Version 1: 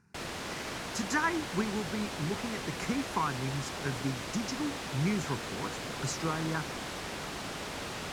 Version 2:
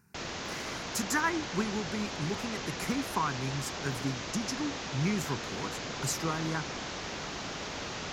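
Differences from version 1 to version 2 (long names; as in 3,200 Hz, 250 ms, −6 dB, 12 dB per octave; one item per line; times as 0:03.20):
background: add Butterworth low-pass 6,900 Hz 72 dB per octave
master: remove high-frequency loss of the air 58 metres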